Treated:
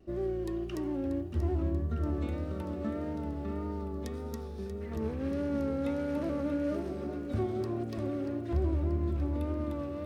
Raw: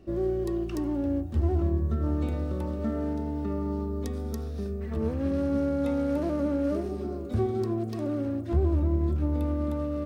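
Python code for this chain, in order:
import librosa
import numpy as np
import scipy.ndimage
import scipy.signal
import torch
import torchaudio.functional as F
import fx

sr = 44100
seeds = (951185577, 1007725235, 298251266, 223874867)

y = fx.echo_feedback(x, sr, ms=635, feedback_pct=58, wet_db=-10)
y = fx.vibrato(y, sr, rate_hz=1.7, depth_cents=49.0)
y = fx.dynamic_eq(y, sr, hz=2300.0, q=0.9, threshold_db=-50.0, ratio=4.0, max_db=5)
y = y * 10.0 ** (-5.5 / 20.0)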